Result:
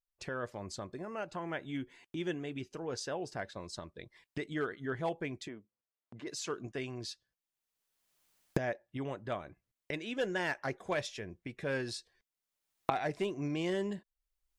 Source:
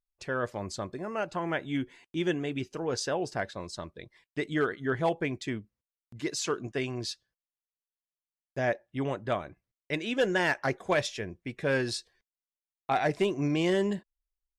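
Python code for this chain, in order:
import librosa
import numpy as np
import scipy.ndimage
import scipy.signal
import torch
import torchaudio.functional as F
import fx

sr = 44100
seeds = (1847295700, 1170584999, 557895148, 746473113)

y = fx.recorder_agc(x, sr, target_db=-25.5, rise_db_per_s=26.0, max_gain_db=30)
y = fx.bandpass_q(y, sr, hz=680.0, q=0.75, at=(5.47, 6.26), fade=0.02)
y = y * 10.0 ** (-7.5 / 20.0)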